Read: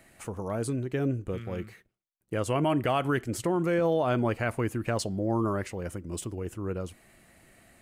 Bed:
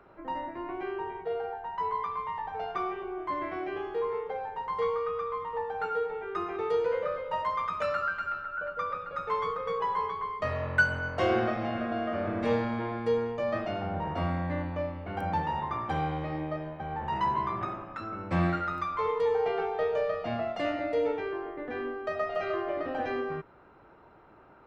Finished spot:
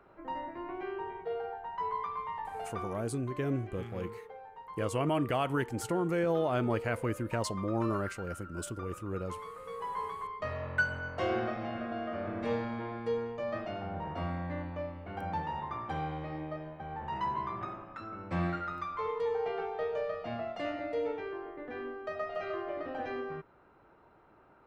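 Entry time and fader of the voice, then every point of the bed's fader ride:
2.45 s, -4.0 dB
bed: 2.53 s -3.5 dB
3.13 s -13 dB
9.55 s -13 dB
10.04 s -5.5 dB

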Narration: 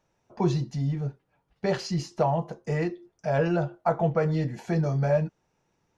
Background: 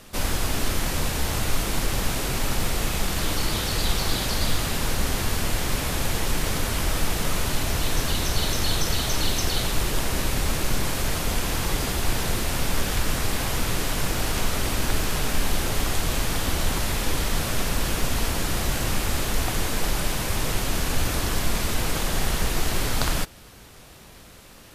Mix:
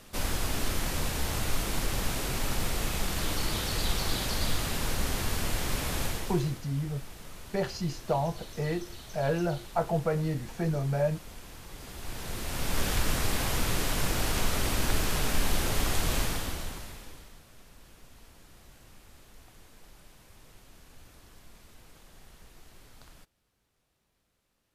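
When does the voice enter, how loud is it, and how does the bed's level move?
5.90 s, -4.0 dB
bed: 6.04 s -5.5 dB
6.63 s -21 dB
11.68 s -21 dB
12.85 s -3.5 dB
16.21 s -3.5 dB
17.43 s -29.5 dB

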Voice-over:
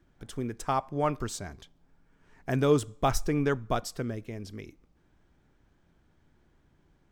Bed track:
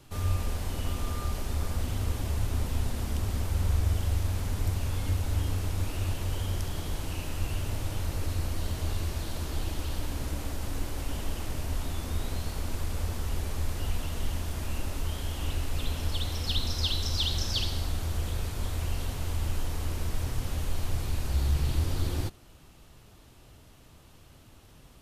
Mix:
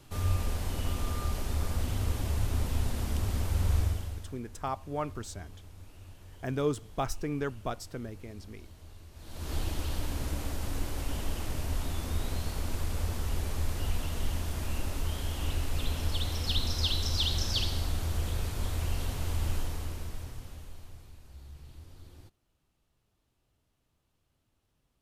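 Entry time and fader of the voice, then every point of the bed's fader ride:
3.95 s, -6.0 dB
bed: 3.81 s -0.5 dB
4.40 s -19.5 dB
9.11 s -19.5 dB
9.52 s -0.5 dB
19.54 s -0.5 dB
21.20 s -22 dB

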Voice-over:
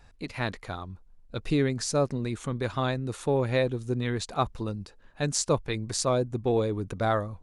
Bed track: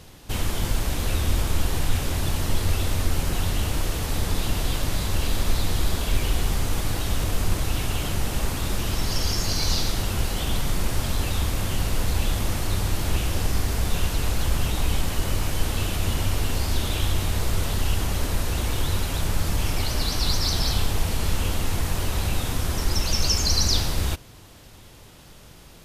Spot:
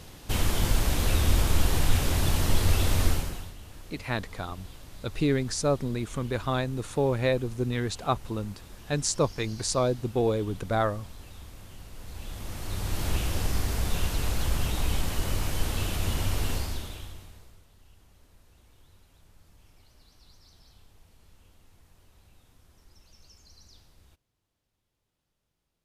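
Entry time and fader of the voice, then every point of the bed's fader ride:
3.70 s, 0.0 dB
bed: 3.09 s 0 dB
3.56 s -21 dB
11.91 s -21 dB
13.03 s -4 dB
16.53 s -4 dB
17.66 s -34 dB

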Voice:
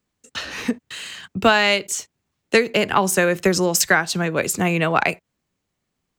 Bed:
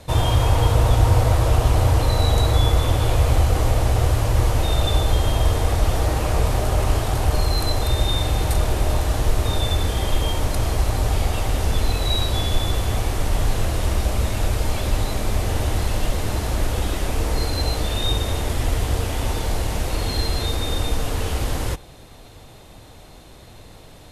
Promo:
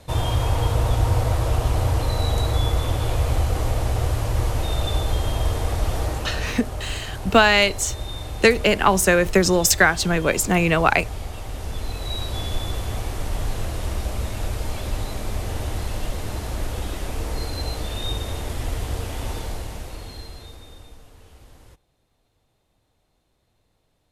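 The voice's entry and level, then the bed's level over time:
5.90 s, +1.0 dB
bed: 6.03 s -4 dB
6.59 s -11 dB
11.42 s -11 dB
12.46 s -5.5 dB
19.37 s -5.5 dB
21.11 s -25 dB

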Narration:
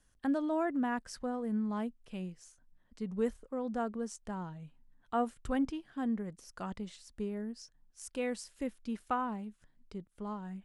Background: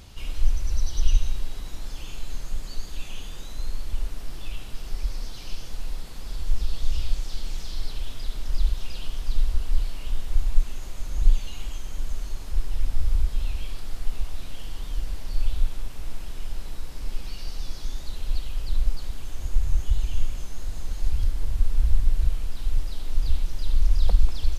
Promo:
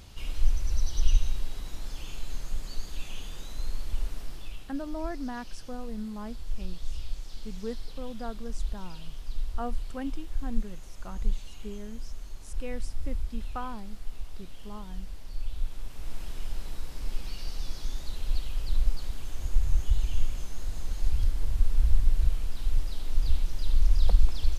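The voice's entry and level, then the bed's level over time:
4.45 s, -3.5 dB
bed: 4.18 s -2.5 dB
4.73 s -9.5 dB
15.48 s -9.5 dB
16.22 s -2 dB

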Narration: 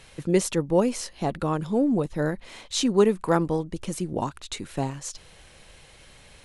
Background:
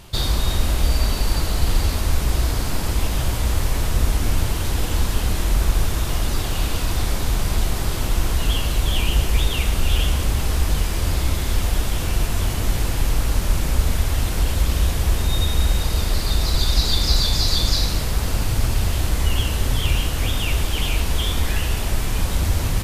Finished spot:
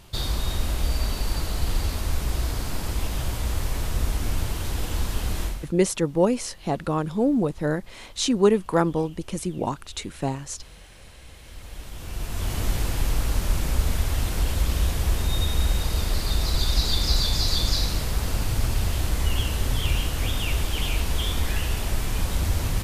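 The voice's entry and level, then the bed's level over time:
5.45 s, +1.0 dB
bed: 5.45 s -6 dB
5.74 s -29 dB
11.20 s -29 dB
12.57 s -4 dB

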